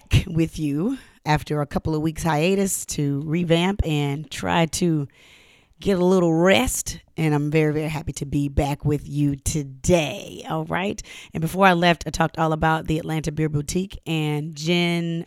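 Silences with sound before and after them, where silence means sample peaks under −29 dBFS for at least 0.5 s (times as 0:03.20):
0:05.05–0:05.82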